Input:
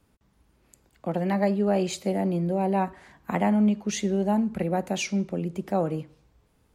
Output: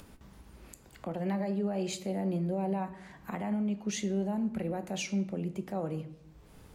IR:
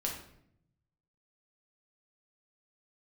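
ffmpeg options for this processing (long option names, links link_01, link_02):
-filter_complex "[0:a]alimiter=limit=-21dB:level=0:latency=1:release=79,acompressor=mode=upward:threshold=-35dB:ratio=2.5,asplit=2[link_01][link_02];[1:a]atrim=start_sample=2205[link_03];[link_02][link_03]afir=irnorm=-1:irlink=0,volume=-9dB[link_04];[link_01][link_04]amix=inputs=2:normalize=0,volume=-7dB"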